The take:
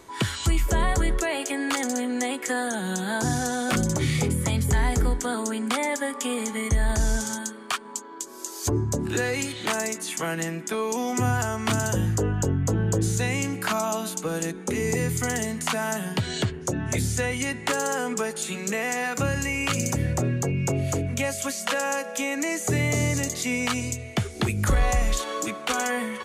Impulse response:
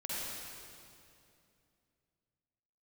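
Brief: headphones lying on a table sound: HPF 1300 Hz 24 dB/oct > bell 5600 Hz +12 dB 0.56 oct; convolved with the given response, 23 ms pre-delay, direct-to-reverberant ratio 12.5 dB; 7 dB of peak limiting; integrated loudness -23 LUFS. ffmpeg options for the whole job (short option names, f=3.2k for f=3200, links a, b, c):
-filter_complex "[0:a]alimiter=limit=-20.5dB:level=0:latency=1,asplit=2[a][b];[1:a]atrim=start_sample=2205,adelay=23[c];[b][c]afir=irnorm=-1:irlink=0,volume=-16dB[d];[a][d]amix=inputs=2:normalize=0,highpass=f=1.3k:w=0.5412,highpass=f=1.3k:w=1.3066,equalizer=f=5.6k:t=o:w=0.56:g=12,volume=7dB"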